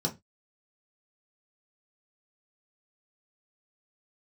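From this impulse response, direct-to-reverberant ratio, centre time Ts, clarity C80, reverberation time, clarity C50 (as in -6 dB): -0.5 dB, 11 ms, 26.0 dB, 0.20 s, 17.5 dB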